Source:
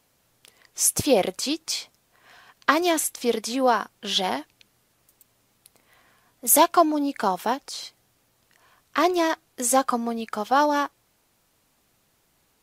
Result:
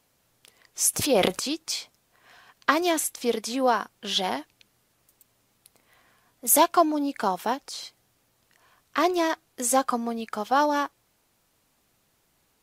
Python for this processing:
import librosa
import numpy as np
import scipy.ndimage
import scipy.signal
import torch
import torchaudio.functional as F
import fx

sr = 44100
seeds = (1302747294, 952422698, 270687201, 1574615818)

y = fx.transient(x, sr, attack_db=-3, sustain_db=11, at=(0.93, 1.54))
y = y * librosa.db_to_amplitude(-2.0)